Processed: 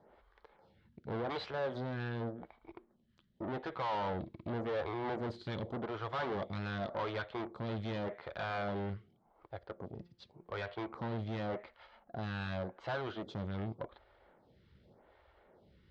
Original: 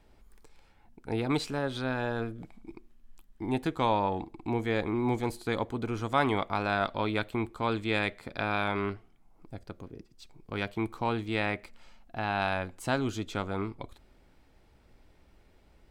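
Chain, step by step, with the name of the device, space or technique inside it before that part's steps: vibe pedal into a guitar amplifier (lamp-driven phase shifter 0.87 Hz; valve stage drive 40 dB, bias 0.55; cabinet simulation 83–3800 Hz, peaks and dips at 280 Hz -9 dB, 560 Hz +4 dB, 2.5 kHz -9 dB); 9.91–10.73 s: de-hum 173.7 Hz, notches 17; trim +6.5 dB

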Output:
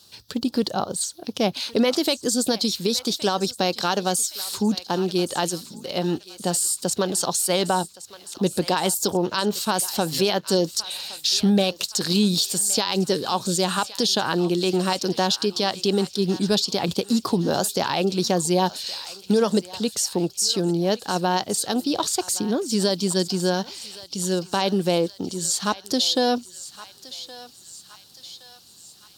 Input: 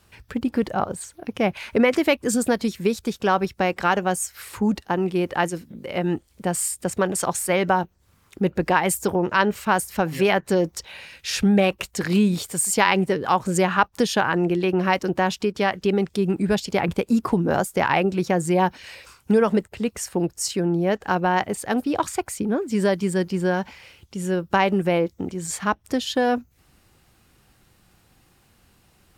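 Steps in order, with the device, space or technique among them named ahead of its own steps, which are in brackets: over-bright horn tweeter (resonant high shelf 3 kHz +11.5 dB, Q 3; peak limiter -10 dBFS, peak gain reduction 11 dB); high-pass 130 Hz 12 dB/octave; peaking EQ 10 kHz -4 dB 1.5 oct; thinning echo 1118 ms, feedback 59%, high-pass 1.2 kHz, level -14 dB

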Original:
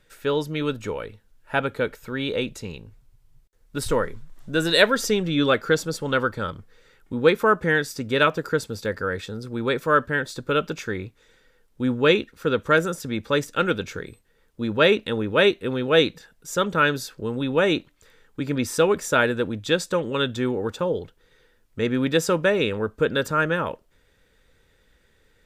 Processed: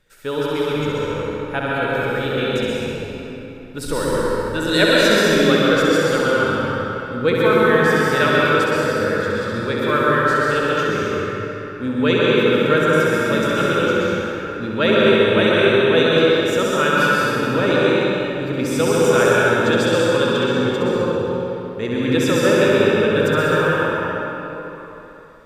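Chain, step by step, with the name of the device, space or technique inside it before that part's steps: tunnel (flutter echo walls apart 11.4 m, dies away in 0.83 s; reverberation RT60 3.6 s, pre-delay 111 ms, DRR -5.5 dB); trim -2 dB

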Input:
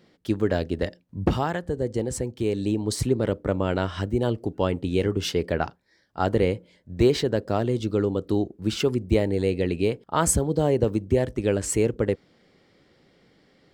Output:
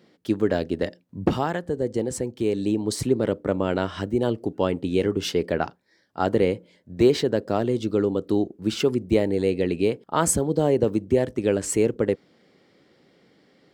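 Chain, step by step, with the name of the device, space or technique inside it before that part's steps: filter by subtraction (in parallel: low-pass 250 Hz 12 dB/octave + polarity flip)

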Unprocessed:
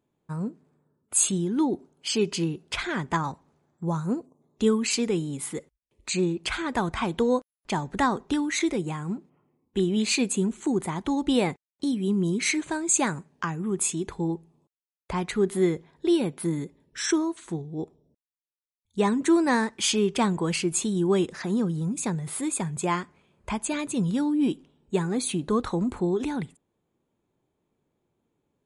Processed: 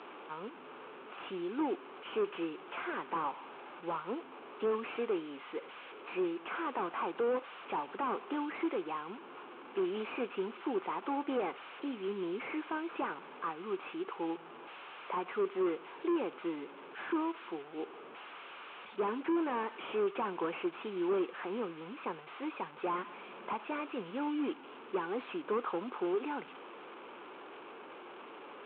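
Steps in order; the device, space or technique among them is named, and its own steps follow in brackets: digital answering machine (band-pass 320–3300 Hz; one-bit delta coder 16 kbps, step -40 dBFS; cabinet simulation 420–4300 Hz, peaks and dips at 630 Hz -6 dB, 1.2 kHz +3 dB, 1.9 kHz -9 dB); 22.98–23.53 s: peaking EQ 210 Hz +7.5 dB 0.78 oct

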